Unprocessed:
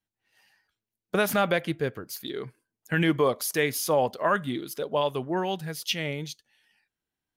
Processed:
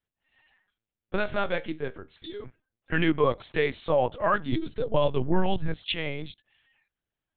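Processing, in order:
linear-prediction vocoder at 8 kHz pitch kept
0:01.18–0:02.45: tuned comb filter 78 Hz, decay 0.27 s, harmonics all, mix 50%
0:04.52–0:05.74: low-shelf EQ 210 Hz +12 dB

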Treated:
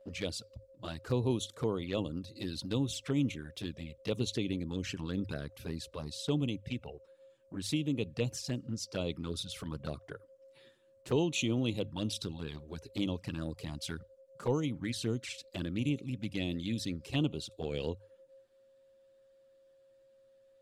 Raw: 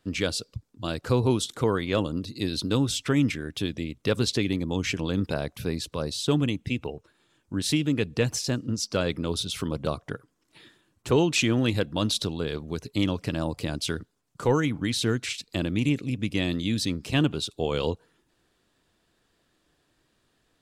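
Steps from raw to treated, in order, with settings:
steady tone 540 Hz −46 dBFS
mains-hum notches 50/100 Hz
flanger swept by the level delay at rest 10.4 ms, full sweep at −21.5 dBFS
level −7.5 dB

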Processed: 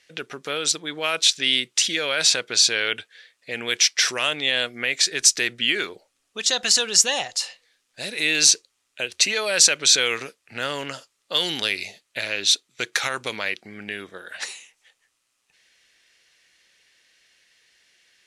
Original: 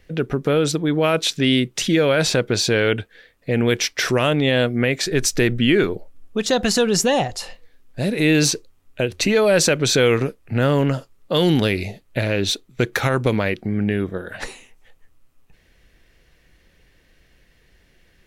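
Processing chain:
meter weighting curve ITU-R 468
level −6 dB

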